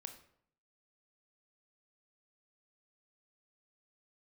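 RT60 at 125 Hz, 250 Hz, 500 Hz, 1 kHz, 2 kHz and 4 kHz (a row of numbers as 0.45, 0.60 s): 0.80, 0.75, 0.65, 0.65, 0.55, 0.45 s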